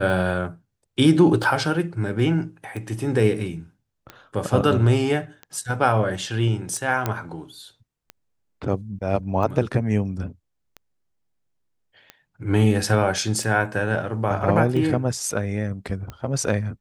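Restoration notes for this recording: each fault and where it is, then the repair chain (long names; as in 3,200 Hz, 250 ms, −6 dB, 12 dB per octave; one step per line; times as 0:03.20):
scratch tick 45 rpm
0:07.06: click −9 dBFS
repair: click removal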